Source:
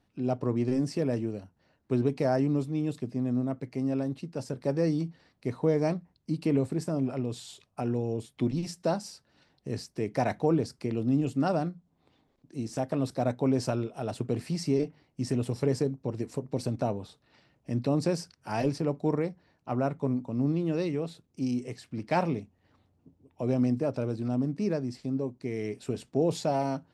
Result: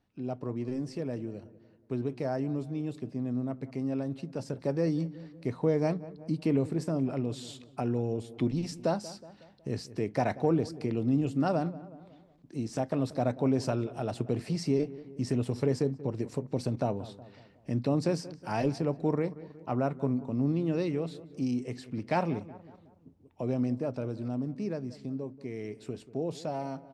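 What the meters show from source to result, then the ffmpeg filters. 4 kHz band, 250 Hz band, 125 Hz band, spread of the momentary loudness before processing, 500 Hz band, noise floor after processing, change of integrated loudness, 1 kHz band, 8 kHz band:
-2.0 dB, -1.5 dB, -1.5 dB, 9 LU, -2.0 dB, -60 dBFS, -1.5 dB, -1.5 dB, -3.5 dB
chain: -filter_complex "[0:a]dynaudnorm=f=360:g=21:m=7dB,highshelf=f=8.8k:g=-8,asplit=2[a][b];[b]adelay=184,lowpass=f=1.8k:p=1,volume=-18dB,asplit=2[c][d];[d]adelay=184,lowpass=f=1.8k:p=1,volume=0.47,asplit=2[e][f];[f]adelay=184,lowpass=f=1.8k:p=1,volume=0.47,asplit=2[g][h];[h]adelay=184,lowpass=f=1.8k:p=1,volume=0.47[i];[a][c][e][g][i]amix=inputs=5:normalize=0,asplit=2[j][k];[k]acompressor=threshold=-31dB:ratio=6,volume=-2.5dB[l];[j][l]amix=inputs=2:normalize=0,volume=-9dB"

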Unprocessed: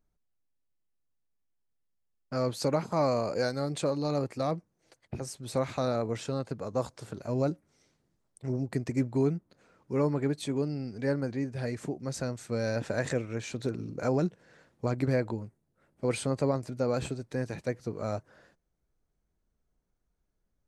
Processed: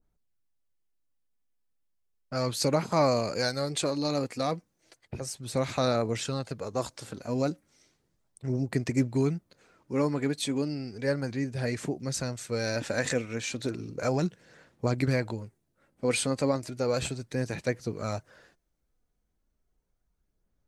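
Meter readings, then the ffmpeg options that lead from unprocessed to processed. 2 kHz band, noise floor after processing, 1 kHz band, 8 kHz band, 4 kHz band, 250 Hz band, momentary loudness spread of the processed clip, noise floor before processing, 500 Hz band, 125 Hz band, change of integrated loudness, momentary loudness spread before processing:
+5.0 dB, -77 dBFS, +2.5 dB, +7.5 dB, +7.5 dB, +1.5 dB, 9 LU, -78 dBFS, +1.0 dB, +1.0 dB, +1.5 dB, 8 LU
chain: -af "aphaser=in_gain=1:out_gain=1:delay=4.1:decay=0.28:speed=0.34:type=sinusoidal,adynamicequalizer=threshold=0.00501:dfrequency=1600:dqfactor=0.7:tfrequency=1600:tqfactor=0.7:attack=5:release=100:ratio=0.375:range=4:mode=boostabove:tftype=highshelf"

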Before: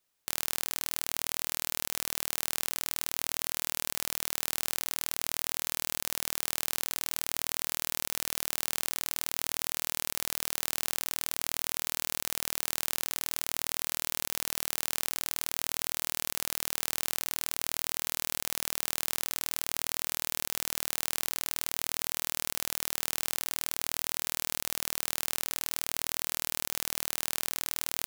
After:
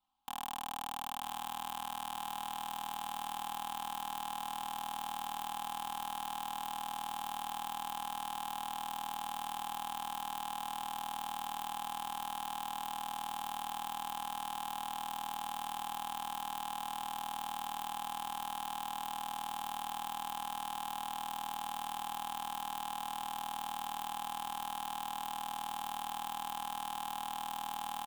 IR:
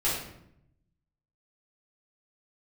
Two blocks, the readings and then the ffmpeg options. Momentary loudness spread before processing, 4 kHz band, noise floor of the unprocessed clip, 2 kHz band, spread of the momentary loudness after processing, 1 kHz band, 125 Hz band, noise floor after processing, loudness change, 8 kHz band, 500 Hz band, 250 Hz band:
0 LU, -8.5 dB, -78 dBFS, -10.0 dB, 0 LU, +9.0 dB, n/a, -43 dBFS, -8.0 dB, -15.5 dB, -11.0 dB, -4.0 dB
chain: -filter_complex "[0:a]firequalizer=gain_entry='entry(260,0);entry(480,-23);entry(820,13);entry(1800,-19);entry(3100,-2);entry(5400,-18)':delay=0.05:min_phase=1,aeval=exprs='0.106*(cos(1*acos(clip(val(0)/0.106,-1,1)))-cos(1*PI/2))+0.0168*(cos(2*acos(clip(val(0)/0.106,-1,1)))-cos(2*PI/2))+0.0266*(cos(4*acos(clip(val(0)/0.106,-1,1)))-cos(4*PI/2))+0.00668*(cos(5*acos(clip(val(0)/0.106,-1,1)))-cos(5*PI/2))+0.00531*(cos(6*acos(clip(val(0)/0.106,-1,1)))-cos(6*PI/2))':c=same,aecho=1:1:3.8:0.83,asplit=2[a][b];[b]aecho=0:1:952|1904|2856|3808|4760|5712:0.316|0.174|0.0957|0.0526|0.0289|0.0159[c];[a][c]amix=inputs=2:normalize=0,volume=-4dB"

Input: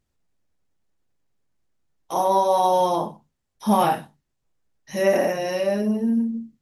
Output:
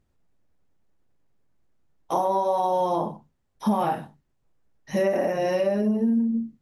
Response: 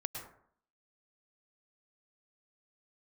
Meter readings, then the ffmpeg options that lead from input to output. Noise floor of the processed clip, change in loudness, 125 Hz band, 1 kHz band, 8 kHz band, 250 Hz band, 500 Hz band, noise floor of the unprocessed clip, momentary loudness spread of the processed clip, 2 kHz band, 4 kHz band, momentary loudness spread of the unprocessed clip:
-72 dBFS, -3.0 dB, -1.0 dB, -4.0 dB, -9.5 dB, -0.5 dB, -2.5 dB, -77 dBFS, 7 LU, -5.0 dB, -7.5 dB, 11 LU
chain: -af "acompressor=threshold=-25dB:ratio=6,highshelf=f=2.3k:g=-10,volume=5.5dB"

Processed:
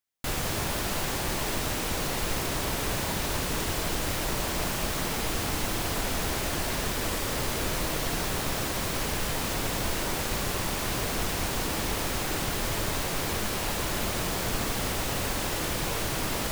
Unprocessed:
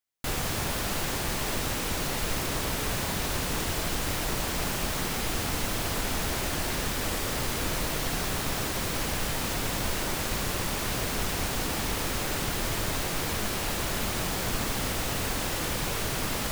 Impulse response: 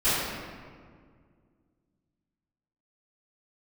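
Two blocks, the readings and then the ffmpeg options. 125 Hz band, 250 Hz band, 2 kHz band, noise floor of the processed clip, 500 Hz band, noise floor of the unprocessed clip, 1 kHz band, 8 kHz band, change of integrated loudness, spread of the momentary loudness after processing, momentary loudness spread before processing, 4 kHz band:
0.0 dB, +0.5 dB, 0.0 dB, -31 dBFS, +1.0 dB, -31 dBFS, +1.0 dB, 0.0 dB, 0.0 dB, 0 LU, 0 LU, 0.0 dB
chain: -filter_complex "[0:a]asplit=2[a][b];[b]asuperpass=centerf=580:order=20:qfactor=0.7[c];[1:a]atrim=start_sample=2205,asetrate=27342,aresample=44100[d];[c][d]afir=irnorm=-1:irlink=0,volume=-25dB[e];[a][e]amix=inputs=2:normalize=0"

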